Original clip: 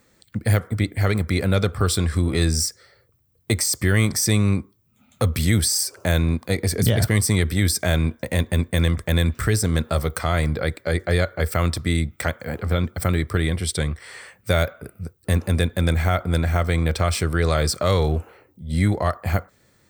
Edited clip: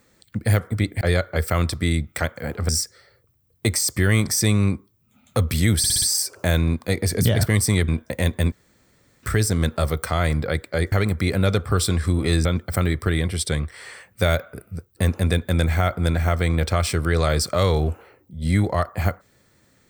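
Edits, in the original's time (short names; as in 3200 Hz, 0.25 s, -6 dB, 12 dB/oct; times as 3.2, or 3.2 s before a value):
1.01–2.54 swap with 11.05–12.73
5.63 stutter 0.06 s, 5 plays
7.49–8.01 cut
8.65–9.36 room tone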